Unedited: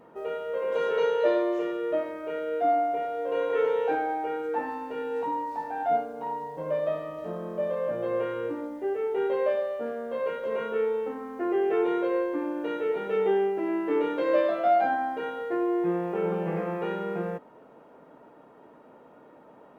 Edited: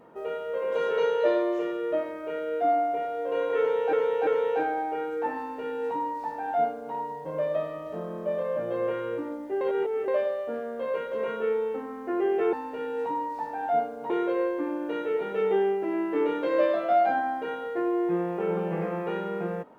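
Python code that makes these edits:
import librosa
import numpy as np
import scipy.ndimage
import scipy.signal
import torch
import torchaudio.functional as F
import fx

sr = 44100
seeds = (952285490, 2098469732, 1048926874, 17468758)

y = fx.edit(x, sr, fx.repeat(start_s=3.59, length_s=0.34, count=3),
    fx.duplicate(start_s=4.7, length_s=1.57, to_s=11.85),
    fx.reverse_span(start_s=8.93, length_s=0.47), tone=tone)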